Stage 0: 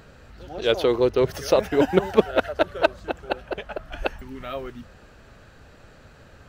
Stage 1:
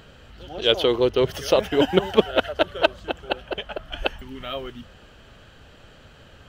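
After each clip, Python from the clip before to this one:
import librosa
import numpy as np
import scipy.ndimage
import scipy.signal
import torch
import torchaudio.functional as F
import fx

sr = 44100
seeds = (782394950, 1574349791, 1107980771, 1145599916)

y = fx.peak_eq(x, sr, hz=3100.0, db=12.5, octaves=0.29)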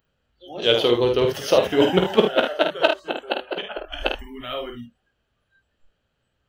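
y = fx.room_early_taps(x, sr, ms=(17, 50, 76), db=(-9.5, -5.5, -10.0))
y = fx.noise_reduce_blind(y, sr, reduce_db=26)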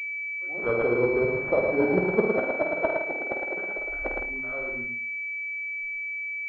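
y = fx.echo_feedback(x, sr, ms=111, feedback_pct=22, wet_db=-3.5)
y = fx.pwm(y, sr, carrier_hz=2300.0)
y = y * 10.0 ** (-6.5 / 20.0)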